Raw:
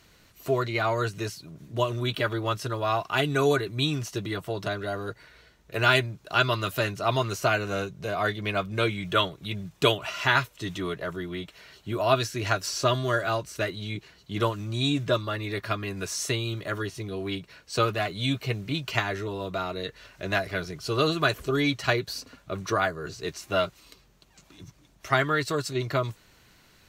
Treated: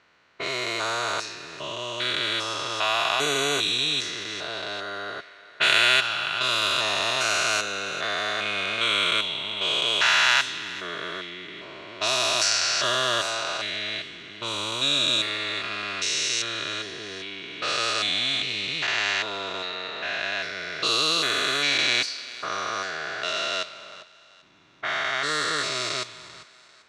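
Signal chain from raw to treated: stepped spectrum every 0.4 s; low-pass opened by the level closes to 1200 Hz, open at -25 dBFS; weighting filter ITU-R 468; thinning echo 0.394 s, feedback 35%, level -17 dB; gain +5.5 dB

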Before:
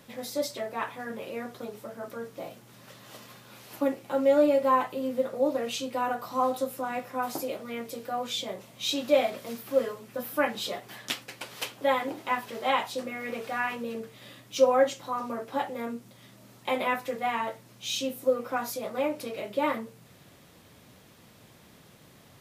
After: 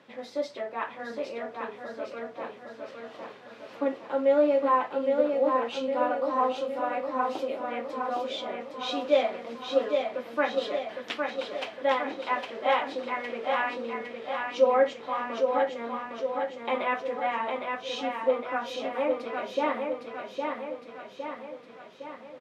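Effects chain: BPF 270–3000 Hz; feedback echo 0.81 s, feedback 56%, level -4.5 dB

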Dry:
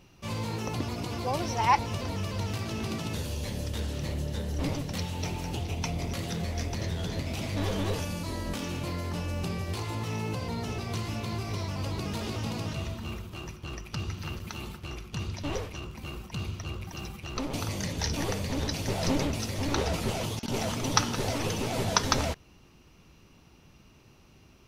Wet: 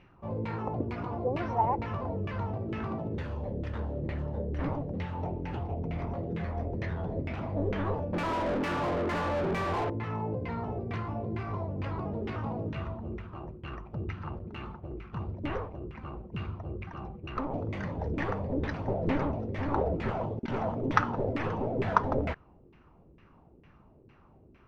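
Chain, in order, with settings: LFO low-pass saw down 2.2 Hz 350–2200 Hz; 8.13–9.9 overdrive pedal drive 33 dB, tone 1400 Hz, clips at -21 dBFS; gain -2 dB

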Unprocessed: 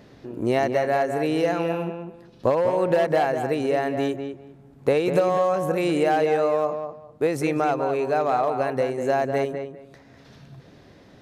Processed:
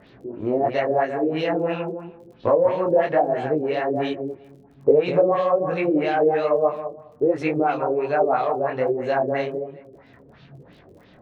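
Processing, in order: LFO low-pass sine 3 Hz 390–3800 Hz; crackle 11/s -43 dBFS; detuned doubles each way 42 cents; gain +2 dB

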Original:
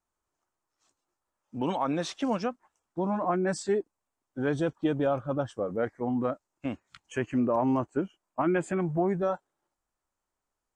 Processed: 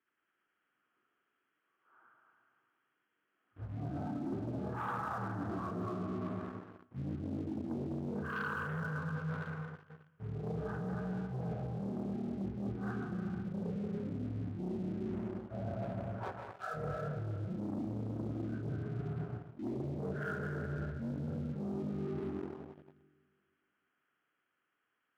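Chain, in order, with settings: inharmonic rescaling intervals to 77%; speed mistake 78 rpm record played at 33 rpm; bell 1500 Hz +8.5 dB 1.4 oct; on a send at -1.5 dB: reverb RT60 2.0 s, pre-delay 0.1 s; on the sum: sample leveller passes 2; HPF 360 Hz 6 dB/oct; reverse; compressor 12:1, threshold -39 dBFS, peak gain reduction 18 dB; reverse; gain +4 dB

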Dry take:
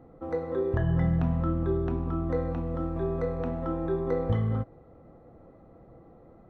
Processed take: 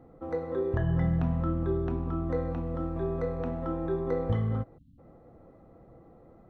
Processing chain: spectral delete 4.78–4.99, 300–2700 Hz; gain -1.5 dB

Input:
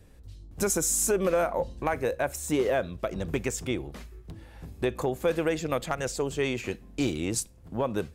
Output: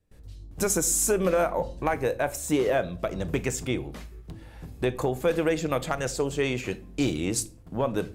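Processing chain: shoebox room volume 350 m³, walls furnished, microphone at 0.48 m; gate with hold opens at -43 dBFS; gain +1.5 dB

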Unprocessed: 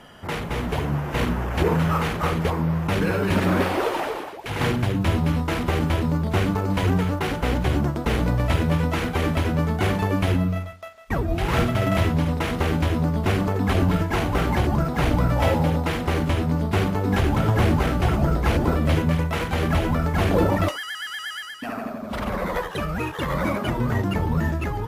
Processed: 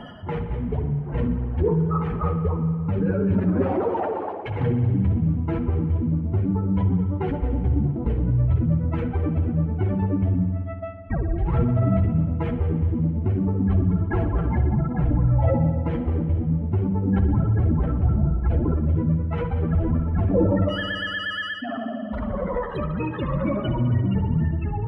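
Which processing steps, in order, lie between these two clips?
spectral contrast raised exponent 2.2; reverse; upward compressor, threshold -25 dBFS; reverse; spring tank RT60 2.1 s, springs 57 ms, chirp 20 ms, DRR 7 dB

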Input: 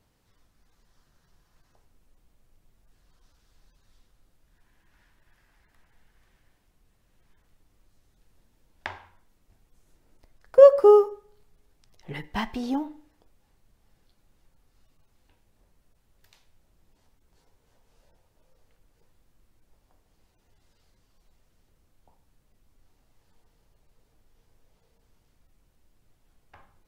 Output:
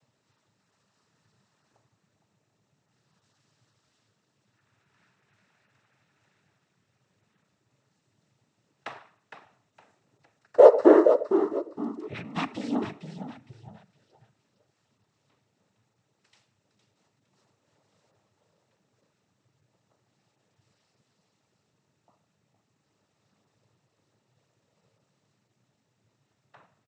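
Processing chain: frequency-shifting echo 0.461 s, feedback 33%, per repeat -67 Hz, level -8.5 dB; noise vocoder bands 12; gain -1 dB

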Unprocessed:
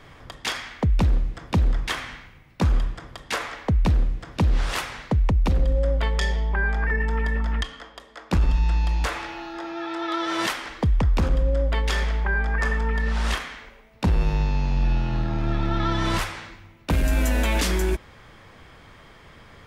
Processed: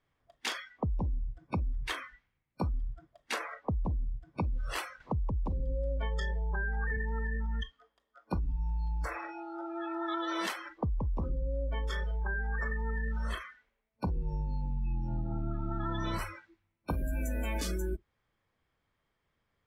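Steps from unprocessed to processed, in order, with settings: compressor 5:1, threshold -24 dBFS, peak gain reduction 8 dB; spectral noise reduction 26 dB; 5–6.97 three-band squash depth 40%; gain -5.5 dB

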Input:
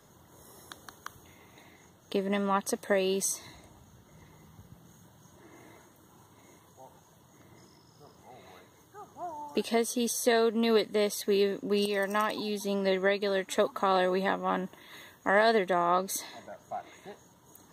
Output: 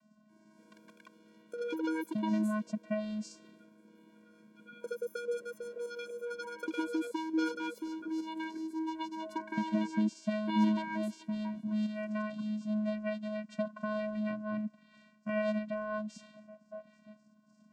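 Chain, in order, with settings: vocoder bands 8, square 213 Hz; echoes that change speed 0.288 s, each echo +7 st, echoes 2; gain -5 dB

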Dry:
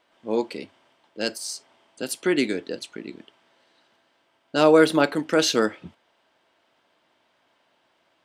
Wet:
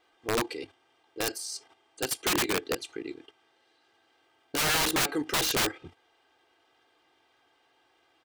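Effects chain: level quantiser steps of 10 dB; comb 2.5 ms, depth 90%; wrapped overs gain 20.5 dB

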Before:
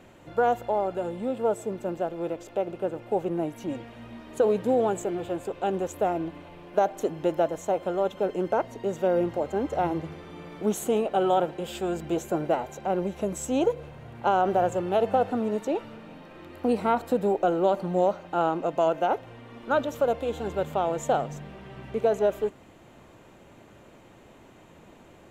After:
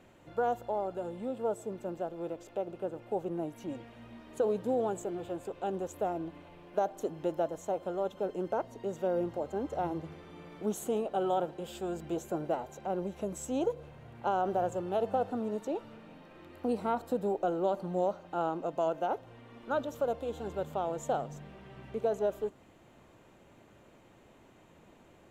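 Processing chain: dynamic EQ 2200 Hz, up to -6 dB, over -48 dBFS, Q 1.6; gain -7 dB

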